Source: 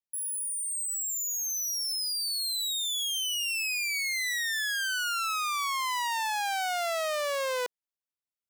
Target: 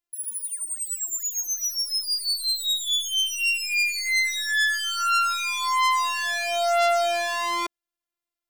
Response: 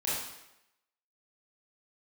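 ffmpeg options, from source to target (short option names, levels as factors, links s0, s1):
-filter_complex "[0:a]asplit=2[s0][s1];[s1]adynamicsmooth=sensitivity=7.5:basefreq=4300,volume=0.794[s2];[s0][s2]amix=inputs=2:normalize=0,afftfilt=real='hypot(re,im)*cos(PI*b)':imag='0':win_size=512:overlap=0.75,volume=2"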